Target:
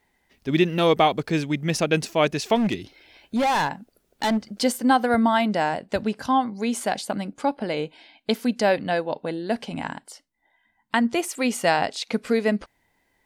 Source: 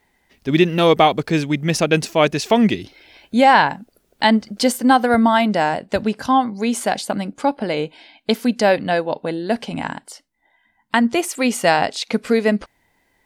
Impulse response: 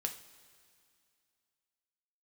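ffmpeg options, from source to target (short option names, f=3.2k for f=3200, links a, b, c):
-filter_complex "[0:a]asplit=3[a][b][c];[a]afade=t=out:st=2.55:d=0.02[d];[b]volume=13.5dB,asoftclip=hard,volume=-13.5dB,afade=t=in:st=2.55:d=0.02,afade=t=out:st=4.61:d=0.02[e];[c]afade=t=in:st=4.61:d=0.02[f];[d][e][f]amix=inputs=3:normalize=0,volume=-5dB"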